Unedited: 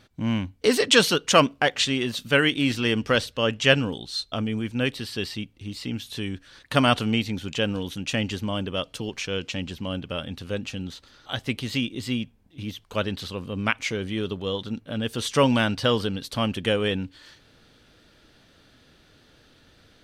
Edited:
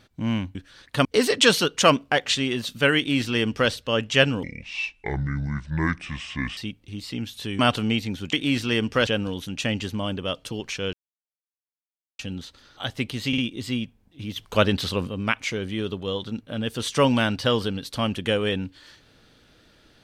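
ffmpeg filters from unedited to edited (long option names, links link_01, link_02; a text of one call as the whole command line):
ffmpeg -i in.wav -filter_complex "[0:a]asplit=14[link_01][link_02][link_03][link_04][link_05][link_06][link_07][link_08][link_09][link_10][link_11][link_12][link_13][link_14];[link_01]atrim=end=0.552[link_15];[link_02]atrim=start=6.318:end=6.822[link_16];[link_03]atrim=start=0.548:end=3.934[link_17];[link_04]atrim=start=3.93:end=5.3,asetpts=PTS-STARTPTS,asetrate=28224,aresample=44100[link_18];[link_05]atrim=start=5.296:end=6.322[link_19];[link_06]atrim=start=6.818:end=7.562[link_20];[link_07]atrim=start=2.468:end=3.212[link_21];[link_08]atrim=start=7.558:end=9.42,asetpts=PTS-STARTPTS,afade=type=out:start_time=1.858:duration=0.004:curve=hsin[link_22];[link_09]atrim=start=9.42:end=10.68,asetpts=PTS-STARTPTS,volume=0[link_23];[link_10]atrim=start=10.68:end=11.822,asetpts=PTS-STARTPTS,afade=type=in:duration=0.004:curve=hsin[link_24];[link_11]atrim=start=11.768:end=11.822[link_25];[link_12]atrim=start=11.768:end=12.752[link_26];[link_13]atrim=start=12.748:end=13.472,asetpts=PTS-STARTPTS,volume=7dB[link_27];[link_14]atrim=start=13.468[link_28];[link_15][link_16]acrossfade=duration=0.004:curve1=hsin:curve2=hsin[link_29];[link_29][link_17]acrossfade=duration=0.004:curve1=hsin:curve2=hsin[link_30];[link_30][link_18]acrossfade=duration=0.004:curve1=hsin:curve2=hsin[link_31];[link_31][link_19]acrossfade=duration=0.004:curve1=hsin:curve2=hsin[link_32];[link_32][link_20]acrossfade=duration=0.004:curve1=hsin:curve2=hsin[link_33];[link_33][link_21]acrossfade=duration=0.004:curve1=hsin:curve2=hsin[link_34];[link_22][link_23][link_24]concat=n=3:v=0:a=1[link_35];[link_34][link_35]acrossfade=duration=0.004:curve1=hsin:curve2=hsin[link_36];[link_36][link_25]acrossfade=duration=0.004:curve1=hsin:curve2=hsin[link_37];[link_37][link_26]acrossfade=duration=0.004:curve1=hsin:curve2=hsin[link_38];[link_38][link_27]acrossfade=duration=0.004:curve1=hsin:curve2=hsin[link_39];[link_39][link_28]acrossfade=duration=0.004:curve1=hsin:curve2=hsin" out.wav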